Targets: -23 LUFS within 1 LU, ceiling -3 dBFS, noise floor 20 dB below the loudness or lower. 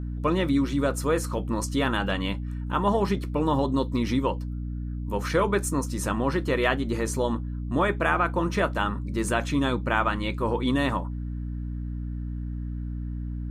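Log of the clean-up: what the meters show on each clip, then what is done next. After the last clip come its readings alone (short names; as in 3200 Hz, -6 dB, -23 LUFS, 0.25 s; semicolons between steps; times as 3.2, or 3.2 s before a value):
hum 60 Hz; harmonics up to 300 Hz; hum level -29 dBFS; loudness -27.0 LUFS; peak -8.0 dBFS; loudness target -23.0 LUFS
-> de-hum 60 Hz, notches 5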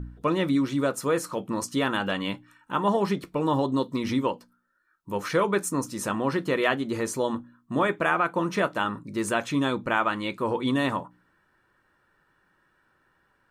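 hum none; loudness -27.0 LUFS; peak -8.5 dBFS; loudness target -23.0 LUFS
-> gain +4 dB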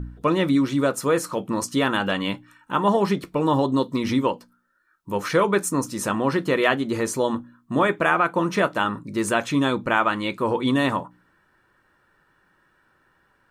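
loudness -23.0 LUFS; peak -4.5 dBFS; noise floor -65 dBFS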